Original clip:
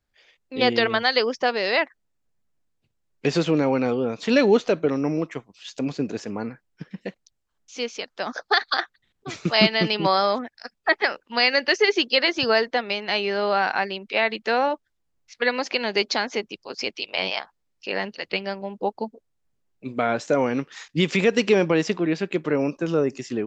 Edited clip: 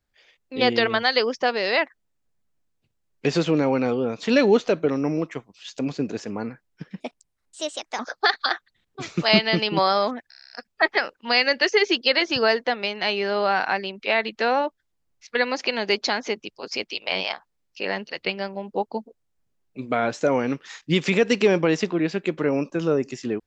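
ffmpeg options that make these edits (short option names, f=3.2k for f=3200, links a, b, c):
-filter_complex "[0:a]asplit=10[a][b][c][d][e][f][g][h][i][j];[a]atrim=end=7.004[k];[b]atrim=start=7:end=8.27,asetpts=PTS-STARTPTS,asetrate=56448,aresample=44100,atrim=end_sample=43755,asetpts=PTS-STARTPTS[l];[c]atrim=start=8.266:end=10.602[m];[d]atrim=start=10.568:end=10.602[n];[e]atrim=start=10.568:end=10.602[o];[f]atrim=start=10.568:end=10.602[p];[g]atrim=start=10.568:end=10.602[q];[h]atrim=start=10.568:end=10.602[r];[i]atrim=start=10.568:end=10.602[s];[j]atrim=start=10.568[t];[k][l]acrossfade=d=0.004:c1=hsin:c2=hsin[u];[u][m]acrossfade=d=0.004:c1=hsin:c2=hsin[v];[v][n]acrossfade=d=0.004:c1=hsin:c2=hsin[w];[w][o]acrossfade=d=0.004:c1=hsin:c2=hsin[x];[x][p]acrossfade=d=0.004:c1=hsin:c2=hsin[y];[y][q]acrossfade=d=0.004:c1=hsin:c2=hsin[z];[z][r]acrossfade=d=0.004:c1=hsin:c2=hsin[aa];[aa][s]acrossfade=d=0.004:c1=hsin:c2=hsin[ab];[ab][t]acrossfade=d=0.004:c1=hsin:c2=hsin"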